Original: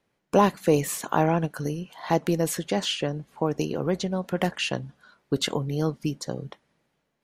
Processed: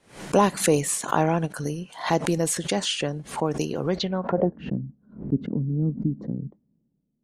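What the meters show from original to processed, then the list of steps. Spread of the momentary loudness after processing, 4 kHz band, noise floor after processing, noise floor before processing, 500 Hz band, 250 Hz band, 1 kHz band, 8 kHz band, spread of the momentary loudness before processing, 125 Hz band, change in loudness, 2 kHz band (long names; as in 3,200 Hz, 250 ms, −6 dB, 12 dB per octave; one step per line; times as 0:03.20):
10 LU, −0.5 dB, −71 dBFS, −76 dBFS, 0.0 dB, +1.0 dB, +0.5 dB, +5.5 dB, 11 LU, +1.5 dB, +1.0 dB, +0.5 dB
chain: low-pass filter sweep 9,200 Hz → 230 Hz, 0:03.85–0:04.58
background raised ahead of every attack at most 140 dB per second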